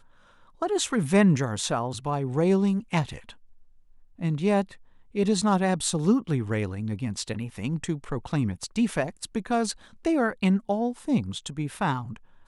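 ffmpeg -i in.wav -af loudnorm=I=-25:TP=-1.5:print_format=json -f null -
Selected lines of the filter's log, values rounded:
"input_i" : "-26.8",
"input_tp" : "-6.6",
"input_lra" : "2.4",
"input_thresh" : "-37.2",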